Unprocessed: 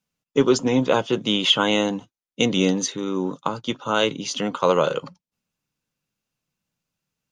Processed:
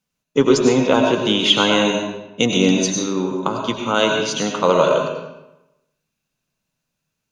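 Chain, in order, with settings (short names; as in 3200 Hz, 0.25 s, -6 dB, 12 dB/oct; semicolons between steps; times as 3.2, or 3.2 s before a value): on a send: ripple EQ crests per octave 1.5, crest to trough 9 dB + reverb RT60 0.95 s, pre-delay 60 ms, DRR 1 dB; on the sum: gain +2.5 dB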